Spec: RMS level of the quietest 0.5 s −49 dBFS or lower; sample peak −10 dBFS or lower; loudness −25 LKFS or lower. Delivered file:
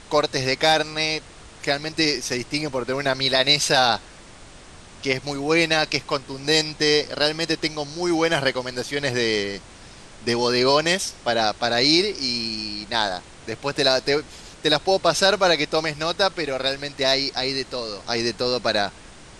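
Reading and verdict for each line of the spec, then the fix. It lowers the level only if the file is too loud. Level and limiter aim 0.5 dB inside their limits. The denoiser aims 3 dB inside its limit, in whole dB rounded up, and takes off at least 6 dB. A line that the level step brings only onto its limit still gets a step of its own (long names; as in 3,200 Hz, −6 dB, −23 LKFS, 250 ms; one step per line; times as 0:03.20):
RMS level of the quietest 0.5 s −44 dBFS: out of spec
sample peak −5.0 dBFS: out of spec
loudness −21.5 LKFS: out of spec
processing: broadband denoise 6 dB, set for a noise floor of −44 dBFS
level −4 dB
brickwall limiter −10.5 dBFS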